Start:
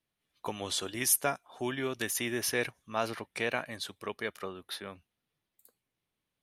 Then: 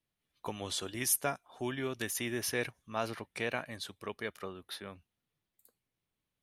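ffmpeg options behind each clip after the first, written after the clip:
-af "lowshelf=f=160:g=6,volume=-3.5dB"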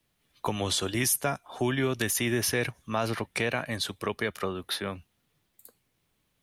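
-filter_complex "[0:a]asplit=2[a][b];[b]alimiter=level_in=2.5dB:limit=-24dB:level=0:latency=1:release=22,volume=-2.5dB,volume=-1dB[c];[a][c]amix=inputs=2:normalize=0,acrossover=split=170[d][e];[e]acompressor=threshold=-36dB:ratio=2[f];[d][f]amix=inputs=2:normalize=0,volume=7.5dB"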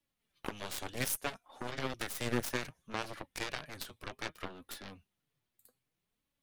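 -af "flanger=delay=3.5:depth=4.8:regen=44:speed=0.63:shape=sinusoidal,aeval=exprs='0.158*(cos(1*acos(clip(val(0)/0.158,-1,1)))-cos(1*PI/2))+0.00891*(cos(3*acos(clip(val(0)/0.158,-1,1)))-cos(3*PI/2))+0.0316*(cos(7*acos(clip(val(0)/0.158,-1,1)))-cos(7*PI/2))+0.00794*(cos(8*acos(clip(val(0)/0.158,-1,1)))-cos(8*PI/2))':c=same,volume=-3dB"

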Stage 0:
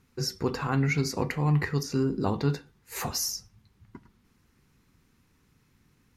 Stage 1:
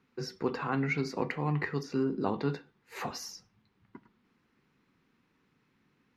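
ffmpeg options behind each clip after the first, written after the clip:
-filter_complex "[0:a]acrossover=split=160 4200:gain=0.141 1 0.126[a][b][c];[a][b][c]amix=inputs=3:normalize=0,volume=-2dB"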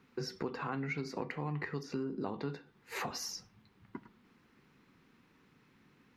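-af "acompressor=threshold=-42dB:ratio=4,volume=5.5dB"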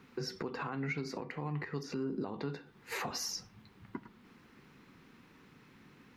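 -af "alimiter=level_in=10dB:limit=-24dB:level=0:latency=1:release=339,volume=-10dB,volume=6.5dB"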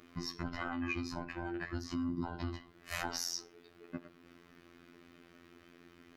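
-af "afftfilt=real='real(if(between(b,1,1008),(2*floor((b-1)/24)+1)*24-b,b),0)':imag='imag(if(between(b,1,1008),(2*floor((b-1)/24)+1)*24-b,b),0)*if(between(b,1,1008),-1,1)':win_size=2048:overlap=0.75,afftfilt=real='hypot(re,im)*cos(PI*b)':imag='0':win_size=2048:overlap=0.75,volume=3.5dB"

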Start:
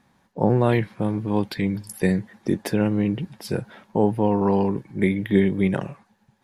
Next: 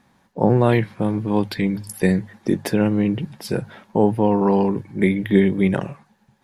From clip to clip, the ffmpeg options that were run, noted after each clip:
-af "bandreject=f=50:t=h:w=6,bandreject=f=100:t=h:w=6,bandreject=f=150:t=h:w=6,volume=3dB"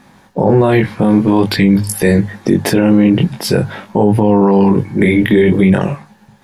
-af "flanger=delay=19.5:depth=3.6:speed=0.48,alimiter=level_in=18dB:limit=-1dB:release=50:level=0:latency=1,volume=-1dB"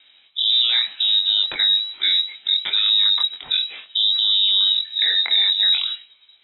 -af "lowpass=f=3.4k:t=q:w=0.5098,lowpass=f=3.4k:t=q:w=0.6013,lowpass=f=3.4k:t=q:w=0.9,lowpass=f=3.4k:t=q:w=2.563,afreqshift=-4000,volume=-8dB"

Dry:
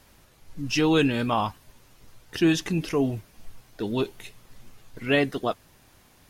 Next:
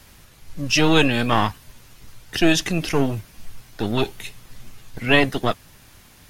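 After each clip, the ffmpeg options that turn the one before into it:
-filter_complex "[0:a]acrossover=split=230|1300[a][b][c];[a]alimiter=level_in=8dB:limit=-24dB:level=0:latency=1,volume=-8dB[d];[b]aeval=exprs='max(val(0),0)':c=same[e];[d][e][c]amix=inputs=3:normalize=0,volume=8.5dB"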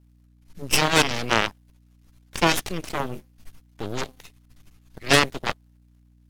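-af "bandreject=f=256.9:t=h:w=4,bandreject=f=513.8:t=h:w=4,bandreject=f=770.7:t=h:w=4,aeval=exprs='0.891*(cos(1*acos(clip(val(0)/0.891,-1,1)))-cos(1*PI/2))+0.00562*(cos(3*acos(clip(val(0)/0.891,-1,1)))-cos(3*PI/2))+0.126*(cos(7*acos(clip(val(0)/0.891,-1,1)))-cos(7*PI/2))+0.141*(cos(8*acos(clip(val(0)/0.891,-1,1)))-cos(8*PI/2))':c=same,aeval=exprs='val(0)+0.00178*(sin(2*PI*60*n/s)+sin(2*PI*2*60*n/s)/2+sin(2*PI*3*60*n/s)/3+sin(2*PI*4*60*n/s)/4+sin(2*PI*5*60*n/s)/5)':c=same"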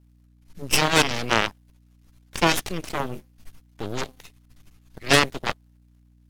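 -af anull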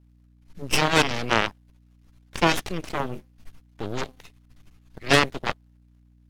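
-af "highshelf=f=5.7k:g=-8"

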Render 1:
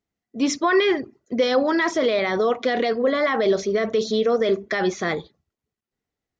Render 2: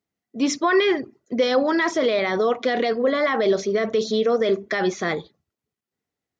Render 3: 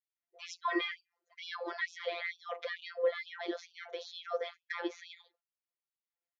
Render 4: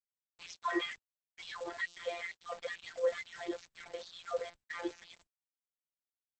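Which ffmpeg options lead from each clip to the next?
-af "highpass=90"
-af "lowpass=3.8k,afftfilt=real='hypot(re,im)*cos(PI*b)':imag='0':win_size=1024:overlap=0.75,afftfilt=real='re*gte(b*sr/1024,340*pow(2500/340,0.5+0.5*sin(2*PI*2.2*pts/sr)))':imag='im*gte(b*sr/1024,340*pow(2500/340,0.5+0.5*sin(2*PI*2.2*pts/sr)))':win_size=1024:overlap=0.75,volume=-7.5dB"
-af "acrusher=bits=7:mix=0:aa=0.000001,volume=-1dB" -ar 48000 -c:a libopus -b:a 10k

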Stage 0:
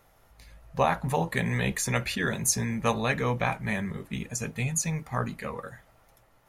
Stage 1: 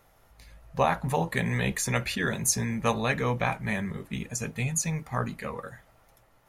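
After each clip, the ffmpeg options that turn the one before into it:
-af anull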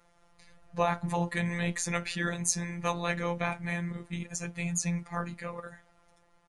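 -af "aresample=22050,aresample=44100,afftfilt=real='hypot(re,im)*cos(PI*b)':imag='0':win_size=1024:overlap=0.75"

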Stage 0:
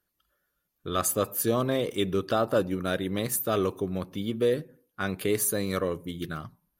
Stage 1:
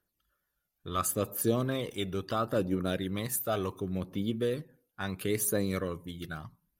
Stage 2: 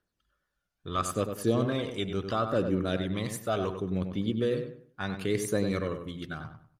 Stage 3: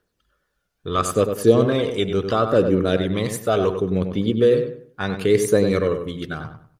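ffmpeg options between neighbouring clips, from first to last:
-af "aphaser=in_gain=1:out_gain=1:delay=1.5:decay=0.45:speed=0.72:type=triangular,volume=-5dB"
-filter_complex "[0:a]lowpass=6.6k,asplit=2[a][b];[b]adelay=97,lowpass=f=2.6k:p=1,volume=-7dB,asplit=2[c][d];[d]adelay=97,lowpass=f=2.6k:p=1,volume=0.3,asplit=2[e][f];[f]adelay=97,lowpass=f=2.6k:p=1,volume=0.3,asplit=2[g][h];[h]adelay=97,lowpass=f=2.6k:p=1,volume=0.3[i];[c][e][g][i]amix=inputs=4:normalize=0[j];[a][j]amix=inputs=2:normalize=0,volume=1.5dB"
-af "equalizer=f=450:w=3.6:g=7.5,volume=8dB"

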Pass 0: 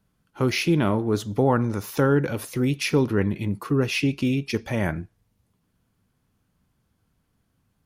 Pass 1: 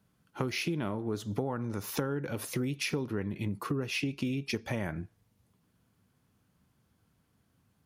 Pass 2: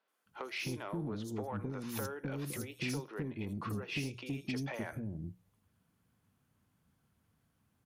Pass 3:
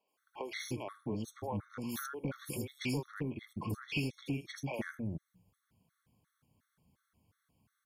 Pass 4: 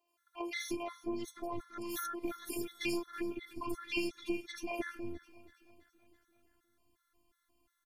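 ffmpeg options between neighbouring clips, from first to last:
-af "highpass=70,acompressor=threshold=-29dB:ratio=10"
-filter_complex "[0:a]bandreject=f=60:t=h:w=6,bandreject=f=120:t=h:w=6,bandreject=f=180:t=h:w=6,acrossover=split=400|4800[a][b][c];[c]adelay=80[d];[a]adelay=260[e];[e][b][d]amix=inputs=3:normalize=0,asoftclip=type=tanh:threshold=-25.5dB,volume=-3dB"
-af "afftfilt=real='re*gt(sin(2*PI*2.8*pts/sr)*(1-2*mod(floor(b*sr/1024/1100),2)),0)':imag='im*gt(sin(2*PI*2.8*pts/sr)*(1-2*mod(floor(b*sr/1024/1100),2)),0)':win_size=1024:overlap=0.75,volume=3dB"
-af "afftfilt=real='hypot(re,im)*cos(PI*b)':imag='0':win_size=512:overlap=0.75,aecho=1:1:330|660|990|1320|1650:0.112|0.0651|0.0377|0.0219|0.0127,volume=5dB"

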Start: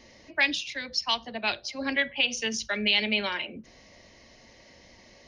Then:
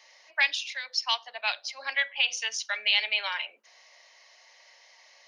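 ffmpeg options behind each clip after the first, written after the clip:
-af "highpass=f=740:w=0.5412,highpass=f=740:w=1.3066"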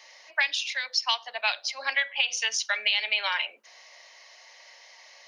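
-af "acompressor=threshold=-26dB:ratio=6,volume=5dB"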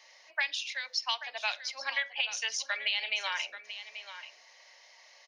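-af "aecho=1:1:834:0.251,volume=-6dB"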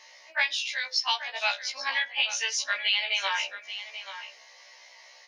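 -af "afftfilt=real='re*1.73*eq(mod(b,3),0)':imag='im*1.73*eq(mod(b,3),0)':win_size=2048:overlap=0.75,volume=7.5dB"

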